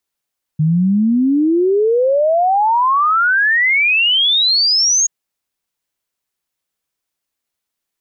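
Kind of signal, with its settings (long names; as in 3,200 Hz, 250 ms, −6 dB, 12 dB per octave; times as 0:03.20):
exponential sine sweep 150 Hz → 6,700 Hz 4.48 s −10.5 dBFS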